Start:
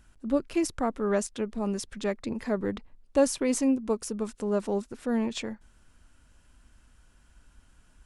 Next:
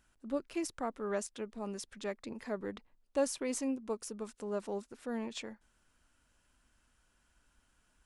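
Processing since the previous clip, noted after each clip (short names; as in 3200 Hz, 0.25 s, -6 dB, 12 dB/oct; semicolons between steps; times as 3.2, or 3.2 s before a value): low shelf 220 Hz -9.5 dB; gain -7 dB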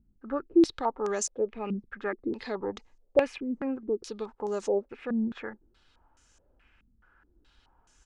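comb 2.4 ms, depth 33%; in parallel at -1.5 dB: limiter -31.5 dBFS, peak gain reduction 10.5 dB; on the sum: stepped low-pass 4.7 Hz 210–6500 Hz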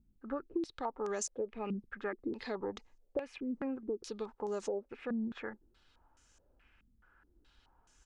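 compressor 10:1, threshold -29 dBFS, peak gain reduction 14 dB; gain -3.5 dB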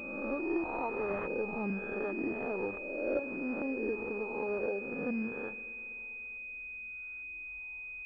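spectral swells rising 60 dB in 1.32 s; spring tank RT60 3.1 s, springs 41/48 ms, chirp 25 ms, DRR 13.5 dB; pulse-width modulation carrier 2500 Hz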